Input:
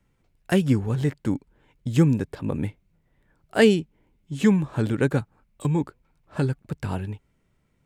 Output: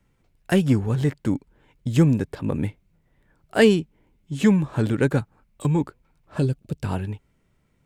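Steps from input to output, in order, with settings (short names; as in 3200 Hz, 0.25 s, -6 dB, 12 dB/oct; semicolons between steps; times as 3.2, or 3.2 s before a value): 6.39–6.84 band shelf 1300 Hz -10 dB; in parallel at -11 dB: hard clip -19.5 dBFS, distortion -8 dB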